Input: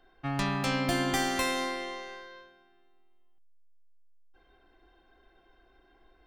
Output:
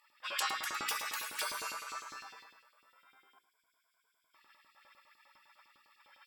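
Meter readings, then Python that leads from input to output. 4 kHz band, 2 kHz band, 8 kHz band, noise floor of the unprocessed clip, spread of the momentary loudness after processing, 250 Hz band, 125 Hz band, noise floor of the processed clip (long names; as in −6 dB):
−4.0 dB, −5.5 dB, −1.5 dB, −64 dBFS, 14 LU, −27.5 dB, below −30 dB, −79 dBFS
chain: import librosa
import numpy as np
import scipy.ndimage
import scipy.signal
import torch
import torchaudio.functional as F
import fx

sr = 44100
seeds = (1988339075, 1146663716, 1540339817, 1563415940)

p1 = fx.rider(x, sr, range_db=10, speed_s=0.5)
p2 = x + (p1 * 10.0 ** (1.5 / 20.0))
p3 = fx.ripple_eq(p2, sr, per_octave=1.7, db=17)
p4 = fx.spec_gate(p3, sr, threshold_db=-30, keep='weak')
p5 = fx.peak_eq(p4, sr, hz=1200.0, db=13.0, octaves=1.6)
p6 = p5 + fx.echo_single(p5, sr, ms=107, db=-13.0, dry=0)
p7 = fx.filter_lfo_highpass(p6, sr, shape='saw_up', hz=9.9, low_hz=270.0, high_hz=4100.0, q=1.8)
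y = fx.hum_notches(p7, sr, base_hz=60, count=9)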